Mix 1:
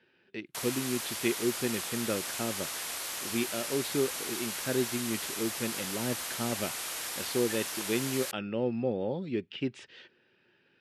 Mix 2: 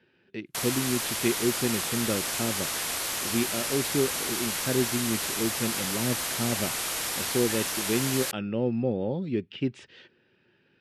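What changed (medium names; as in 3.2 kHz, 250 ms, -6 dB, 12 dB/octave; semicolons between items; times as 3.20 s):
background +6.0 dB; master: add bass shelf 270 Hz +8.5 dB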